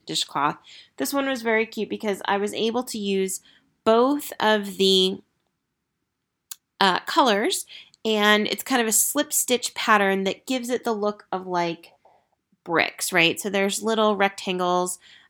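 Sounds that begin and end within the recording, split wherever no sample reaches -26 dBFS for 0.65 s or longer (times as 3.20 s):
6.51–11.73 s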